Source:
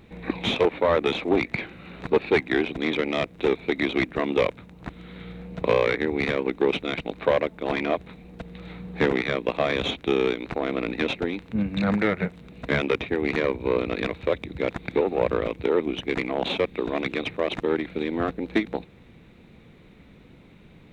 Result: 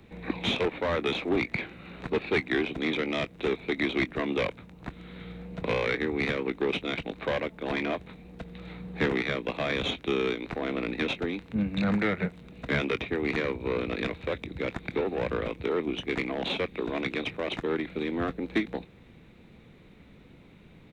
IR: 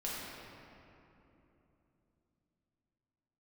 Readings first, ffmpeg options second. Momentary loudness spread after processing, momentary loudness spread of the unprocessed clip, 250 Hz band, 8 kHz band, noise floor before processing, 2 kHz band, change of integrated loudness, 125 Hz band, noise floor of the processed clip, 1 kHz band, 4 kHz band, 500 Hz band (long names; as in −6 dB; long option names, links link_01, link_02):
10 LU, 11 LU, −3.5 dB, can't be measured, −51 dBFS, −2.5 dB, −4.5 dB, −2.5 dB, −53 dBFS, −5.5 dB, −2.5 dB, −6.5 dB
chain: -filter_complex "[0:a]acrossover=split=140|340|1200[link_01][link_02][link_03][link_04];[link_03]asoftclip=type=tanh:threshold=-27dB[link_05];[link_04]asplit=2[link_06][link_07];[link_07]adelay=23,volume=-12dB[link_08];[link_06][link_08]amix=inputs=2:normalize=0[link_09];[link_01][link_02][link_05][link_09]amix=inputs=4:normalize=0,volume=-2.5dB"